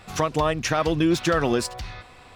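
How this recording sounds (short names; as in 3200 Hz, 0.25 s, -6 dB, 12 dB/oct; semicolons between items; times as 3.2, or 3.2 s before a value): noise floor -48 dBFS; spectral tilt -5.0 dB/oct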